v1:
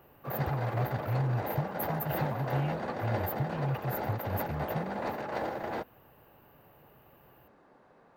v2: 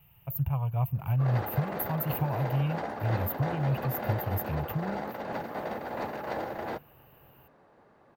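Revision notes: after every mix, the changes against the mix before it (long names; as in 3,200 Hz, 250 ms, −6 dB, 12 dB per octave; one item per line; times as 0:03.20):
speech +4.0 dB
background: entry +0.95 s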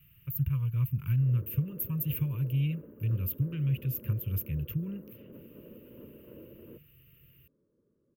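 background: add transistor ladder low-pass 750 Hz, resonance 50%
master: add Butterworth band-reject 750 Hz, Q 0.67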